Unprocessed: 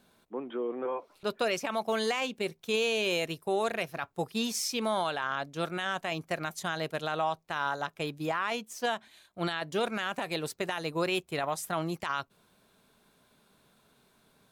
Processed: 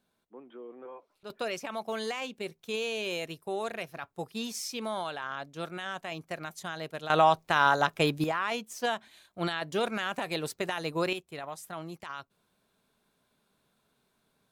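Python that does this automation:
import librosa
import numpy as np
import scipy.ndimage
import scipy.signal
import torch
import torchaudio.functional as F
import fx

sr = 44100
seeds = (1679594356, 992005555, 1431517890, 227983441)

y = fx.gain(x, sr, db=fx.steps((0.0, -12.0), (1.3, -4.5), (7.1, 8.5), (8.24, 0.5), (11.13, -8.0)))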